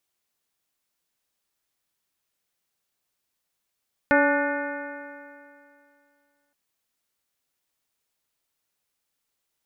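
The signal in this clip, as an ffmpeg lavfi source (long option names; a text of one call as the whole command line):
ffmpeg -f lavfi -i "aevalsrc='0.0891*pow(10,-3*t/2.45)*sin(2*PI*284.4*t)+0.112*pow(10,-3*t/2.45)*sin(2*PI*571.17*t)+0.0708*pow(10,-3*t/2.45)*sin(2*PI*862.67*t)+0.0266*pow(10,-3*t/2.45)*sin(2*PI*1161.17*t)+0.1*pow(10,-3*t/2.45)*sin(2*PI*1468.86*t)+0.0631*pow(10,-3*t/2.45)*sin(2*PI*1787.82*t)+0.0316*pow(10,-3*t/2.45)*sin(2*PI*2119.99*t)+0.0126*pow(10,-3*t/2.45)*sin(2*PI*2467.19*t)':duration=2.42:sample_rate=44100" out.wav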